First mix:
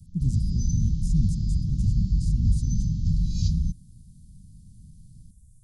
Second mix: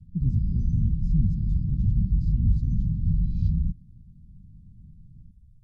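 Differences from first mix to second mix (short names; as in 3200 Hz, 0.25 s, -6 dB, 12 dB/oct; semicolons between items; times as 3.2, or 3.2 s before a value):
background: add bell 4700 Hz -9 dB 2.2 oct; master: add air absorption 340 m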